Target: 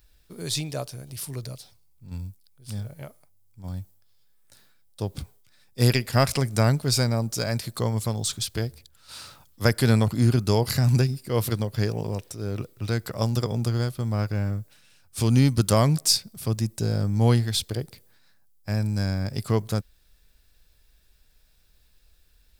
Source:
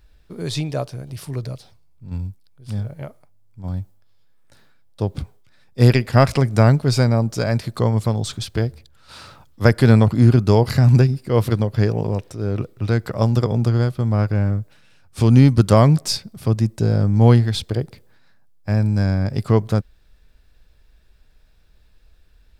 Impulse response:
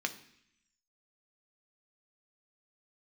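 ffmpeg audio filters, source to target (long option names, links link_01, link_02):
-af "crystalizer=i=3.5:c=0,volume=-7.5dB"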